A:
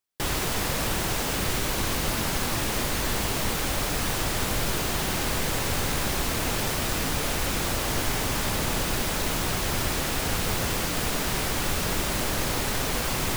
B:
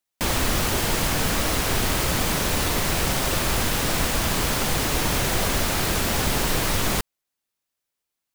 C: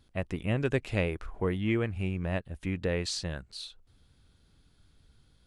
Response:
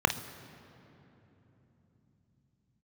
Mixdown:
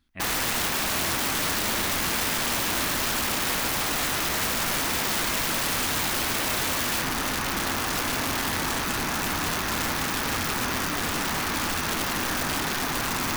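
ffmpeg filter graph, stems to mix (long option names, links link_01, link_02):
-filter_complex "[0:a]volume=-2.5dB,asplit=2[link_01][link_02];[link_02]volume=-10dB[link_03];[1:a]aeval=exprs='val(0)*sin(2*PI*610*n/s)':channel_layout=same,volume=-3.5dB[link_04];[2:a]volume=-6dB[link_05];[3:a]atrim=start_sample=2205[link_06];[link_03][link_06]afir=irnorm=-1:irlink=0[link_07];[link_01][link_04][link_05][link_07]amix=inputs=4:normalize=0,equalizer=frequency=125:width_type=o:width=1:gain=-9,equalizer=frequency=250:width_type=o:width=1:gain=7,equalizer=frequency=500:width_type=o:width=1:gain=-12,equalizer=frequency=2000:width_type=o:width=1:gain=6,equalizer=frequency=8000:width_type=o:width=1:gain=-3,aeval=exprs='(mod(10*val(0)+1,2)-1)/10':channel_layout=same"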